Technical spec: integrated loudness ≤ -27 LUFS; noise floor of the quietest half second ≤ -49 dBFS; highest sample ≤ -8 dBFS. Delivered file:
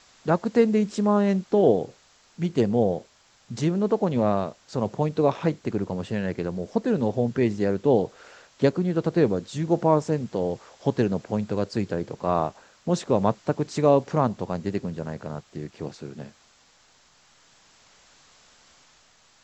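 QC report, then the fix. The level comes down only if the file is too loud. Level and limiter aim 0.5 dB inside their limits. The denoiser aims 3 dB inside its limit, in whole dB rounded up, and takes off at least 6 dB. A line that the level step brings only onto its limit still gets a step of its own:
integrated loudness -25.0 LUFS: fail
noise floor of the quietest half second -59 dBFS: OK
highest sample -6.0 dBFS: fail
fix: gain -2.5 dB

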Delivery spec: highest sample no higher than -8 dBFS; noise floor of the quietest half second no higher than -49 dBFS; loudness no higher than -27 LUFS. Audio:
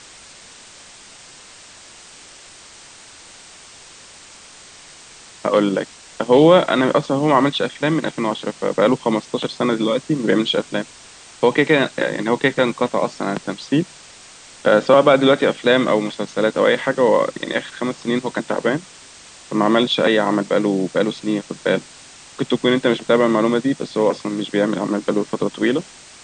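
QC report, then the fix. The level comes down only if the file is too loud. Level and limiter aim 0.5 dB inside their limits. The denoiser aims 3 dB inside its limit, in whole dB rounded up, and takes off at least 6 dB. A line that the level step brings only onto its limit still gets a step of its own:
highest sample -1.5 dBFS: fail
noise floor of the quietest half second -43 dBFS: fail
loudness -18.5 LUFS: fail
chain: gain -9 dB

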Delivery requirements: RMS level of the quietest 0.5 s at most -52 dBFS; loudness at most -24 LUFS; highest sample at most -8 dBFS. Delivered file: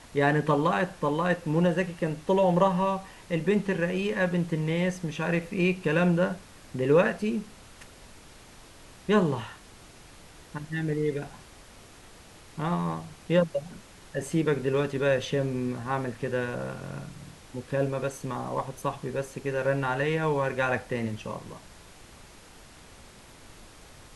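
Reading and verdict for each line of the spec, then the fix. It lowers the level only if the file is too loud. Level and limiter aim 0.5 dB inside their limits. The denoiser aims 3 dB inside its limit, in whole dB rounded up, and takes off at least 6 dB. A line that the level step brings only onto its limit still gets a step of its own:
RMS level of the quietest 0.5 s -50 dBFS: fail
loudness -28.0 LUFS: OK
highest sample -9.5 dBFS: OK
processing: denoiser 6 dB, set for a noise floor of -50 dBFS

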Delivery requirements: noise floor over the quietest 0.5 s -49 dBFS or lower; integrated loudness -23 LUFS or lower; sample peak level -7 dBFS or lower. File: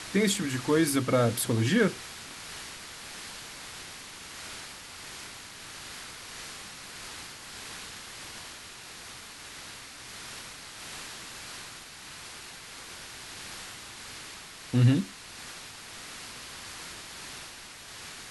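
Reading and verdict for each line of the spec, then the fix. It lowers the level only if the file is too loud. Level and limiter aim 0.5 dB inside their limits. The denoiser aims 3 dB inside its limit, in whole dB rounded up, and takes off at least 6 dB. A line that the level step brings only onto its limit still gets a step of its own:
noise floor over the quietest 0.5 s -46 dBFS: fail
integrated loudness -33.5 LUFS: OK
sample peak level -11.5 dBFS: OK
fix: denoiser 6 dB, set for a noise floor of -46 dBFS

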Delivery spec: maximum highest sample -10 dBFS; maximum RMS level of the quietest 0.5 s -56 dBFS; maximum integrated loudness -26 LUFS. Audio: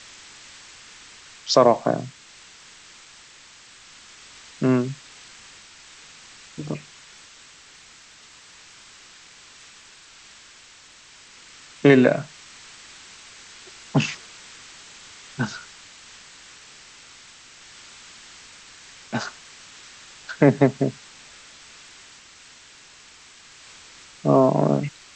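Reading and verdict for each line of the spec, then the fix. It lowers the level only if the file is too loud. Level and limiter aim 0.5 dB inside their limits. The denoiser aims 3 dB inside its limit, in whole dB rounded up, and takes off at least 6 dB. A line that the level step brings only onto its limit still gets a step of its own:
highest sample -3.0 dBFS: fail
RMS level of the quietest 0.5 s -49 dBFS: fail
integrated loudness -21.5 LUFS: fail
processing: denoiser 6 dB, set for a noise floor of -49 dBFS; gain -5 dB; limiter -10.5 dBFS

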